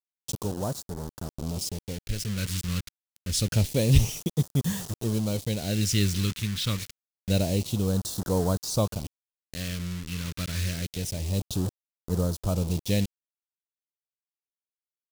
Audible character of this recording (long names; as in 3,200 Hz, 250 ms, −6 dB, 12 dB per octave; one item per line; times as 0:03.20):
a quantiser's noise floor 6 bits, dither none
phaser sweep stages 2, 0.27 Hz, lowest notch 670–2,300 Hz
tremolo triangle 0.87 Hz, depth 35%